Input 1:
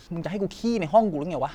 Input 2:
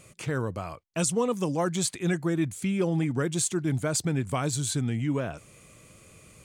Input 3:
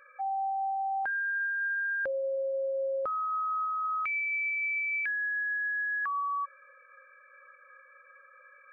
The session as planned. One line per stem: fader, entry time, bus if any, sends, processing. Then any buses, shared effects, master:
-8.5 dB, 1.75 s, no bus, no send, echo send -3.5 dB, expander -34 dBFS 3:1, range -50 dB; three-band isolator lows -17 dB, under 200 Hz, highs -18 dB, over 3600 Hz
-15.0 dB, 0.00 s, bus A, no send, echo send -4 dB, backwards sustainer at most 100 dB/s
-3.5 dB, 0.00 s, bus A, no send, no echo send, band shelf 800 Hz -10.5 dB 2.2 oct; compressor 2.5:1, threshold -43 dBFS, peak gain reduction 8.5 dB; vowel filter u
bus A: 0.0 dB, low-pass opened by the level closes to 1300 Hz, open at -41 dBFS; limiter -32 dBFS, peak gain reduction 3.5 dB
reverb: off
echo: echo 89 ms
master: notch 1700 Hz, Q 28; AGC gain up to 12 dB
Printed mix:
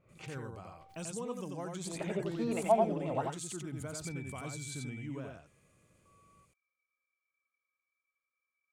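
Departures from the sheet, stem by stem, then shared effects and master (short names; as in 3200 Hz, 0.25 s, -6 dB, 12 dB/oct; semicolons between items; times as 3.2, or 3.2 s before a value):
stem 1: missing expander -34 dBFS 3:1, range -50 dB; master: missing AGC gain up to 12 dB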